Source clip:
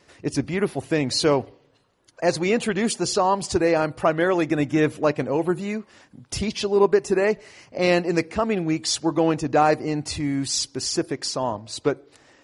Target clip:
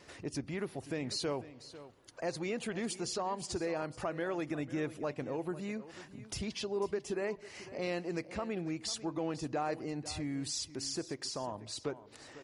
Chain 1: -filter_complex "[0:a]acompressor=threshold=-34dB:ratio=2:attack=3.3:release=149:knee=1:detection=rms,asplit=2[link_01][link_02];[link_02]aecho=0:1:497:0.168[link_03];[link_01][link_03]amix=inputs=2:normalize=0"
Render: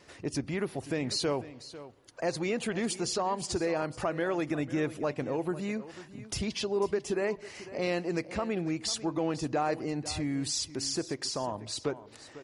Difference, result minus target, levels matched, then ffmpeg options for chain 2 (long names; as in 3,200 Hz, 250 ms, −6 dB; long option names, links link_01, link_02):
downward compressor: peak gain reduction −5.5 dB
-filter_complex "[0:a]acompressor=threshold=-45dB:ratio=2:attack=3.3:release=149:knee=1:detection=rms,asplit=2[link_01][link_02];[link_02]aecho=0:1:497:0.168[link_03];[link_01][link_03]amix=inputs=2:normalize=0"